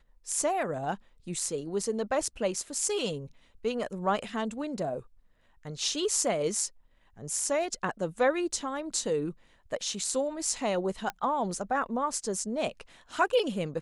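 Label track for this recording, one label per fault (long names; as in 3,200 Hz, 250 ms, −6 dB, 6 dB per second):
11.100000	11.100000	click −19 dBFS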